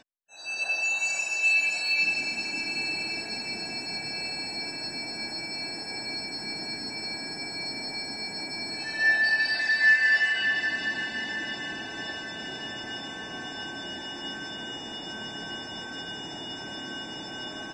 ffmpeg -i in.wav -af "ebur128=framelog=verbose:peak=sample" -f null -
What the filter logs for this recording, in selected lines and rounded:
Integrated loudness:
  I:         -27.8 LUFS
  Threshold: -37.8 LUFS
Loudness range:
  LRA:        12.3 LU
  Threshold: -47.8 LUFS
  LRA low:   -35.4 LUFS
  LRA high:  -23.2 LUFS
Sample peak:
  Peak:      -11.4 dBFS